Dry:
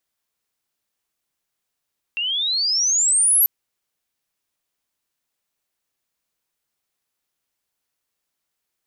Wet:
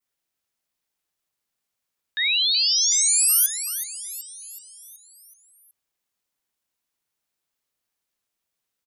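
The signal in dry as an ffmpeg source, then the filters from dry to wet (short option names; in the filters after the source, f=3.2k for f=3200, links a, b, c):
-f lavfi -i "aevalsrc='pow(10,(-21+9*t/1.29)/20)*sin(2*PI*2700*1.29/log(12000/2700)*(exp(log(12000/2700)*t/1.29)-1))':d=1.29:s=44100"
-af "aecho=1:1:375|750|1125|1500|1875|2250:0.282|0.152|0.0822|0.0444|0.024|0.0129,adynamicequalizer=threshold=0.02:dfrequency=2900:dqfactor=0.73:tfrequency=2900:tqfactor=0.73:attack=5:release=100:ratio=0.375:range=2.5:mode=boostabove:tftype=bell,aeval=exprs='val(0)*sin(2*PI*960*n/s+960*0.75/0.57*sin(2*PI*0.57*n/s))':c=same"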